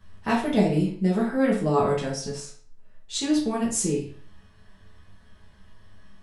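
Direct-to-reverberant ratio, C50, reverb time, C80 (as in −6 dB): −6.5 dB, 6.0 dB, 0.50 s, 10.5 dB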